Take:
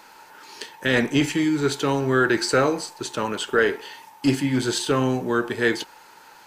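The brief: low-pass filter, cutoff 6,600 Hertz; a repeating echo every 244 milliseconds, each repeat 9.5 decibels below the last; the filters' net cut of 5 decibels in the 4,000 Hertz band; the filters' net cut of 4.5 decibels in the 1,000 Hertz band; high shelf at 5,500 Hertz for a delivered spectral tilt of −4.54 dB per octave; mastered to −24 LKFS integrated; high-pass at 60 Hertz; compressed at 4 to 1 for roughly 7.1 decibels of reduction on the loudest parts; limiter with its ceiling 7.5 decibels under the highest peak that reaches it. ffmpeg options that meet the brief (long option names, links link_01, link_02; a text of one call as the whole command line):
ffmpeg -i in.wav -af "highpass=60,lowpass=6600,equalizer=frequency=1000:width_type=o:gain=-6,equalizer=frequency=4000:width_type=o:gain=-9,highshelf=frequency=5500:gain=8.5,acompressor=threshold=-24dB:ratio=4,alimiter=limit=-20dB:level=0:latency=1,aecho=1:1:244|488|732|976:0.335|0.111|0.0365|0.012,volume=6dB" out.wav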